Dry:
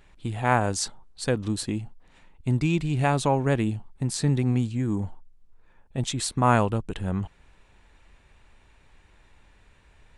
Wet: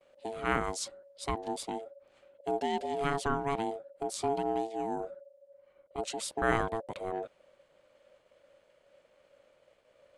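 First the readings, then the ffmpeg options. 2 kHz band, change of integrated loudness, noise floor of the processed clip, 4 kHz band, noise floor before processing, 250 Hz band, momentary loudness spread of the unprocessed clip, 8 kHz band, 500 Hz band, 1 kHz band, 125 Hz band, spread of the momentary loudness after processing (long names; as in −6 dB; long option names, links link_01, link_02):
−5.0 dB, −8.0 dB, −68 dBFS, −7.5 dB, −58 dBFS, −11.5 dB, 11 LU, −8.5 dB, −4.0 dB, −5.0 dB, −19.5 dB, 11 LU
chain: -af "agate=range=-33dB:threshold=-54dB:ratio=3:detection=peak,aeval=exprs='val(0)*sin(2*PI*560*n/s)':channel_layout=same,volume=-5.5dB"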